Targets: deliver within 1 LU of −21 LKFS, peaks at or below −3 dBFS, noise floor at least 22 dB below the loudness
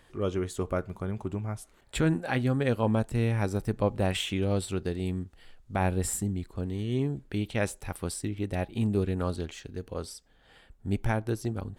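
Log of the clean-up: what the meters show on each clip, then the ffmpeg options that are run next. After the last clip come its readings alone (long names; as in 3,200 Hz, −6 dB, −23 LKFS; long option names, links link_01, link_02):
integrated loudness −30.5 LKFS; sample peak −14.5 dBFS; target loudness −21.0 LKFS
→ -af "volume=9.5dB"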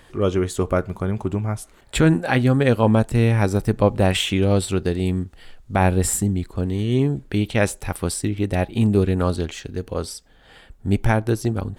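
integrated loudness −21.0 LKFS; sample peak −5.0 dBFS; background noise floor −51 dBFS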